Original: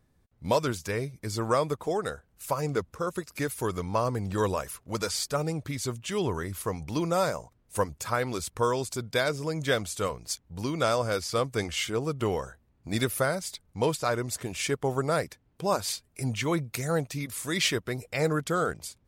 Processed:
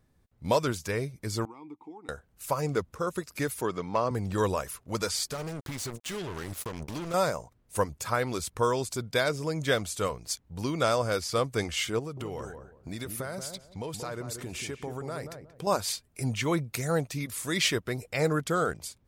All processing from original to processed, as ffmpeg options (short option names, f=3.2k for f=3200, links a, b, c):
-filter_complex "[0:a]asettb=1/sr,asplit=3[a][b][c];[a]atrim=end=1.454[d];[b]atrim=start=1.45:end=2.09,asetpts=PTS-STARTPTS,afade=t=in:d=0.004:c=qsin,afade=t=out:st=0.636:d=0.004:c=qsin,acompressor=threshold=-32dB:ratio=2:attack=3.2:release=140:knee=1:detection=peak,asplit=3[e][f][g];[e]bandpass=f=300:t=q:w=8,volume=0dB[h];[f]bandpass=f=870:t=q:w=8,volume=-6dB[i];[g]bandpass=f=2.24k:t=q:w=8,volume=-9dB[j];[h][i][j]amix=inputs=3:normalize=0[k];[c]atrim=start=2.086[l];[d][k]acrossfade=d=0.004:c1=hsin:c2=qsin[m];[m][l]acrossfade=d=0.004:c1=qsin:c2=hsin,asettb=1/sr,asplit=3[n][o][p];[n]atrim=end=3.614[q];[o]atrim=start=3.61:end=4.11,asetpts=PTS-STARTPTS,afade=t=in:d=0.004:c=qsin,afade=t=out:st=0.496:d=0.004:c=qsin,highpass=160,lowpass=5k,asoftclip=type=hard:threshold=-16dB[r];[p]atrim=start=4.106[s];[q][r]acrossfade=d=0.004:c1=hsin:c2=qsin[t];[t][s]acrossfade=d=0.004:c1=qsin:c2=hsin,asettb=1/sr,asplit=3[u][v][w];[u]atrim=end=5.324[x];[v]atrim=start=5.32:end=7.14,asetpts=PTS-STARTPTS,afade=t=in:d=0.004:c=qsin,afade=t=out:st=1.816:d=0.004:c=qsin,acompressor=threshold=-31dB:ratio=10:attack=3.2:release=140:knee=1:detection=peak,acrusher=bits=5:mix=0:aa=0.5[y];[w]atrim=start=7.136[z];[x][y]acrossfade=d=0.004:c1=hsin:c2=qsin[aa];[aa][z]acrossfade=d=0.004:c1=qsin:c2=hsin,asettb=1/sr,asplit=3[ab][ac][ad];[ab]atrim=end=11.994[ae];[ac]atrim=start=11.99:end=15.67,asetpts=PTS-STARTPTS,afade=t=in:d=0.004:c=qsin,afade=t=out:st=3.676:d=0.004:c=qsin,acompressor=threshold=-33dB:ratio=5:attack=3.2:release=140:knee=1:detection=peak,asplit=2[af][ag];[ag]adelay=181,lowpass=f=900:p=1,volume=-6dB,asplit=2[ah][ai];[ai]adelay=181,lowpass=f=900:p=1,volume=0.28,asplit=2[aj][ak];[ak]adelay=181,lowpass=f=900:p=1,volume=0.28,asplit=2[al][am];[am]adelay=181,lowpass=f=900:p=1,volume=0.28[an];[af][ah][aj][al][an]amix=inputs=5:normalize=0,atrim=end_sample=162288[ao];[ad]atrim=start=15.666[ap];[ae][ao]acrossfade=d=0.004:c1=hsin:c2=qsin[aq];[aq][ap]acrossfade=d=0.004:c1=qsin:c2=hsin"